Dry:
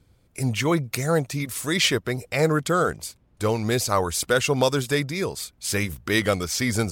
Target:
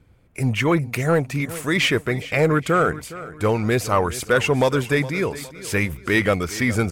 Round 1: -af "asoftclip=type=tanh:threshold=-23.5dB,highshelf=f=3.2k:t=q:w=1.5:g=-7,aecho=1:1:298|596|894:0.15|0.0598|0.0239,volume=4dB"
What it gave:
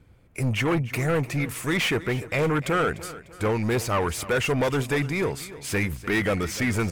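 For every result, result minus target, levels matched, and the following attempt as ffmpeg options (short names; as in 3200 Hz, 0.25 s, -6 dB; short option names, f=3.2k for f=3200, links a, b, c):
soft clip: distortion +12 dB; echo 0.115 s early
-af "asoftclip=type=tanh:threshold=-12.5dB,highshelf=f=3.2k:t=q:w=1.5:g=-7,aecho=1:1:298|596|894:0.15|0.0598|0.0239,volume=4dB"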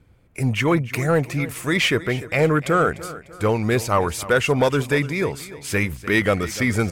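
echo 0.115 s early
-af "asoftclip=type=tanh:threshold=-12.5dB,highshelf=f=3.2k:t=q:w=1.5:g=-7,aecho=1:1:413|826|1239:0.15|0.0598|0.0239,volume=4dB"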